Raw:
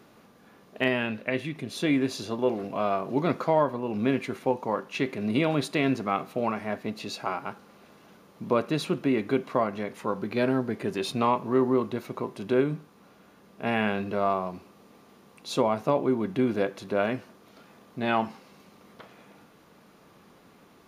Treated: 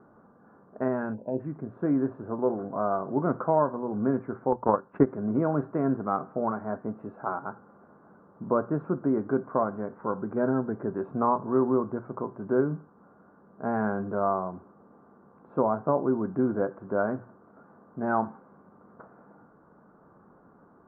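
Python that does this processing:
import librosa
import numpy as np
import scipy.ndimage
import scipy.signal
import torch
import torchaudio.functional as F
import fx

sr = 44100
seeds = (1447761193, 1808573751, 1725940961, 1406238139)

y = fx.spec_box(x, sr, start_s=1.14, length_s=0.26, low_hz=1000.0, high_hz=2400.0, gain_db=-24)
y = fx.transient(y, sr, attack_db=11, sustain_db=-8, at=(4.52, 5.07))
y = scipy.signal.sosfilt(scipy.signal.cheby1(5, 1.0, 1500.0, 'lowpass', fs=sr, output='sos'), y)
y = fx.hum_notches(y, sr, base_hz=60, count=2)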